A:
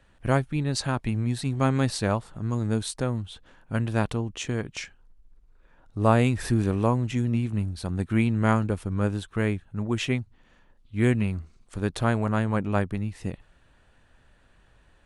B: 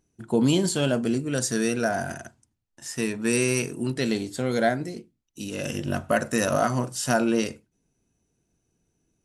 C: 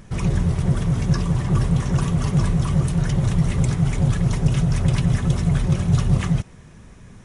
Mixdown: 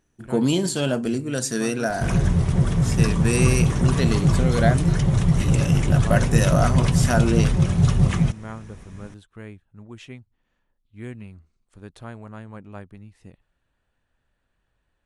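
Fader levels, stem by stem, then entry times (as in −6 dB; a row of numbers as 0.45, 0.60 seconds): −14.0, +0.5, +0.5 decibels; 0.00, 0.00, 1.90 seconds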